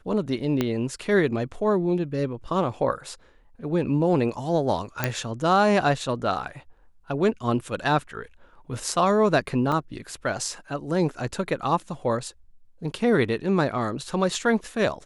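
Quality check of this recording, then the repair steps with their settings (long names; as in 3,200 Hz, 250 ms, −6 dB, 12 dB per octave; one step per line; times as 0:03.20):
0:00.61: click −10 dBFS
0:05.04: click −8 dBFS
0:09.72: drop-out 2.4 ms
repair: click removal
repair the gap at 0:09.72, 2.4 ms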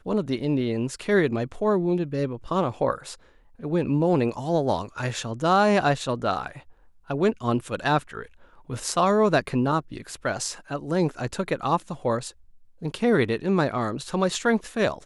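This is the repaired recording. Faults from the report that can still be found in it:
0:00.61: click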